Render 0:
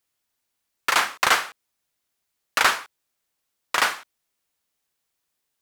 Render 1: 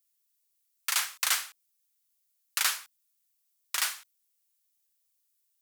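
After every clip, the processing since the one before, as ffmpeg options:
ffmpeg -i in.wav -af "aderivative,bandreject=frequency=50:width_type=h:width=6,bandreject=frequency=100:width_type=h:width=6,bandreject=frequency=150:width_type=h:width=6,bandreject=frequency=200:width_type=h:width=6" out.wav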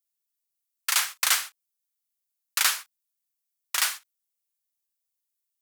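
ffmpeg -i in.wav -af "agate=range=-12dB:threshold=-38dB:ratio=16:detection=peak,volume=4.5dB" out.wav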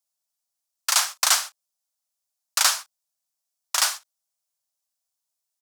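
ffmpeg -i in.wav -af "firequalizer=gain_entry='entry(270,0);entry(390,-28);entry(580,10);entry(2000,-2);entry(5300,7);entry(15000,-3)':delay=0.05:min_phase=1" out.wav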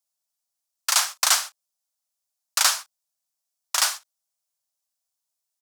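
ffmpeg -i in.wav -af anull out.wav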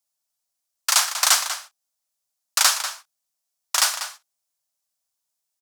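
ffmpeg -i in.wav -filter_complex "[0:a]asplit=2[link_01][link_02];[link_02]adelay=192.4,volume=-9dB,highshelf=frequency=4000:gain=-4.33[link_03];[link_01][link_03]amix=inputs=2:normalize=0,volume=2dB" out.wav

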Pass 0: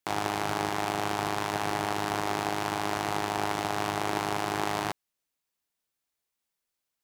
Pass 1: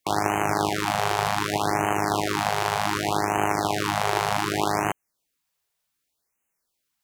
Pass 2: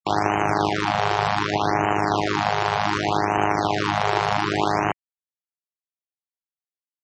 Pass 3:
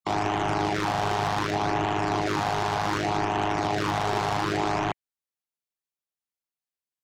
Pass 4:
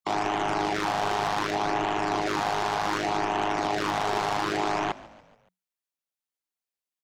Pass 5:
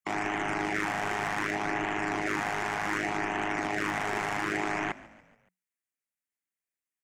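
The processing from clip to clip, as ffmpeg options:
ffmpeg -i in.wav -af "afftfilt=real='re*(1-between(b*sr/1024,240*pow(4400/240,0.5+0.5*sin(2*PI*0.66*pts/sr))/1.41,240*pow(4400/240,0.5+0.5*sin(2*PI*0.66*pts/sr))*1.41))':imag='im*(1-between(b*sr/1024,240*pow(4400/240,0.5+0.5*sin(2*PI*0.66*pts/sr))/1.41,240*pow(4400/240,0.5+0.5*sin(2*PI*0.66*pts/sr))*1.41))':win_size=1024:overlap=0.75,volume=6.5dB" out.wav
ffmpeg -i in.wav -filter_complex "[0:a]asplit=2[link_01][link_02];[link_02]asoftclip=type=tanh:threshold=-15dB,volume=-6dB[link_03];[link_01][link_03]amix=inputs=2:normalize=0,afftfilt=real='re*gte(hypot(re,im),0.0282)':imag='im*gte(hypot(re,im),0.0282)':win_size=1024:overlap=0.75" out.wav
ffmpeg -i in.wav -af "asoftclip=type=tanh:threshold=-19dB" out.wav
ffmpeg -i in.wav -filter_complex "[0:a]equalizer=frequency=76:width_type=o:width=2:gain=-12,asplit=5[link_01][link_02][link_03][link_04][link_05];[link_02]adelay=142,afreqshift=-46,volume=-19dB[link_06];[link_03]adelay=284,afreqshift=-92,volume=-24.8dB[link_07];[link_04]adelay=426,afreqshift=-138,volume=-30.7dB[link_08];[link_05]adelay=568,afreqshift=-184,volume=-36.5dB[link_09];[link_01][link_06][link_07][link_08][link_09]amix=inputs=5:normalize=0" out.wav
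ffmpeg -i in.wav -af "equalizer=frequency=250:width_type=o:width=1:gain=4,equalizer=frequency=500:width_type=o:width=1:gain=-3,equalizer=frequency=1000:width_type=o:width=1:gain=-4,equalizer=frequency=2000:width_type=o:width=1:gain=11,equalizer=frequency=4000:width_type=o:width=1:gain=-11,equalizer=frequency=8000:width_type=o:width=1:gain=5,volume=-4dB" out.wav

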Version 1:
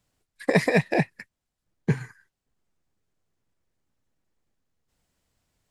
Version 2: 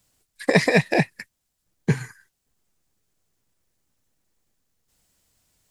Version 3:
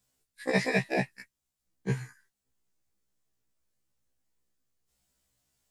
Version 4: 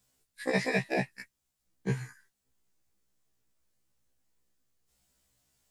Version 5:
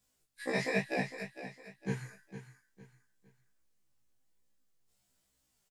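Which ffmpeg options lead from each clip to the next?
ffmpeg -i in.wav -filter_complex "[0:a]highshelf=frequency=4300:gain=11.5,acrossover=split=6900[link_01][link_02];[link_02]acompressor=threshold=-49dB:ratio=4:attack=1:release=60[link_03];[link_01][link_03]amix=inputs=2:normalize=0,volume=2.5dB" out.wav
ffmpeg -i in.wav -af "afftfilt=real='re*1.73*eq(mod(b,3),0)':imag='im*1.73*eq(mod(b,3),0)':win_size=2048:overlap=0.75,volume=-6.5dB" out.wav
ffmpeg -i in.wav -af "acompressor=threshold=-36dB:ratio=1.5,volume=3dB" out.wav
ffmpeg -i in.wav -af "flanger=delay=19:depth=5.4:speed=1.1,aecho=1:1:457|914|1371:0.266|0.0878|0.029" out.wav

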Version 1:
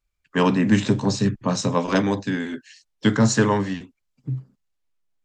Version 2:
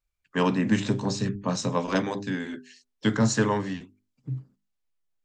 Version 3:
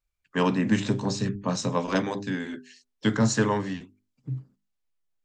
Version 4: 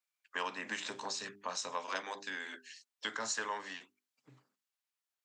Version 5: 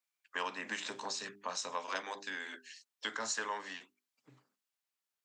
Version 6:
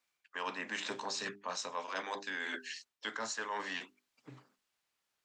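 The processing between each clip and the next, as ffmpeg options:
ffmpeg -i in.wav -af "bandreject=frequency=50:width_type=h:width=6,bandreject=frequency=100:width_type=h:width=6,bandreject=frequency=150:width_type=h:width=6,bandreject=frequency=200:width_type=h:width=6,bandreject=frequency=250:width_type=h:width=6,bandreject=frequency=300:width_type=h:width=6,bandreject=frequency=350:width_type=h:width=6,bandreject=frequency=400:width_type=h:width=6,volume=-4.5dB" out.wav
ffmpeg -i in.wav -af anull out.wav
ffmpeg -i in.wav -af "highpass=860,acompressor=threshold=-39dB:ratio=2" out.wav
ffmpeg -i in.wav -af "highpass=120" out.wav
ffmpeg -i in.wav -af "highshelf=frequency=8200:gain=-11,areverse,acompressor=threshold=-46dB:ratio=6,areverse,volume=10dB" out.wav

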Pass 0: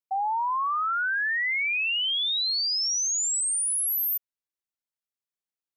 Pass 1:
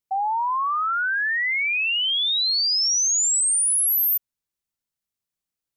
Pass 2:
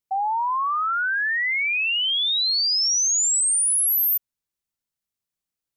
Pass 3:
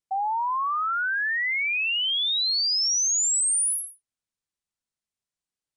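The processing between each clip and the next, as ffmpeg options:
ffmpeg -i in.wav -af "bass=frequency=250:gain=9,treble=frequency=4000:gain=3,volume=3dB" out.wav
ffmpeg -i in.wav -af anull out.wav
ffmpeg -i in.wav -af "aresample=22050,aresample=44100,volume=-2.5dB" out.wav

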